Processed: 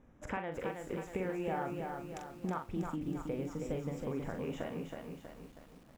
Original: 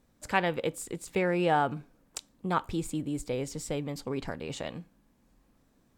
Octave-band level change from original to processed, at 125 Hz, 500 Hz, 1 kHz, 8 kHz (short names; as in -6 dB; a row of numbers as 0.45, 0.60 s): -5.0, -6.5, -10.0, -15.5 dB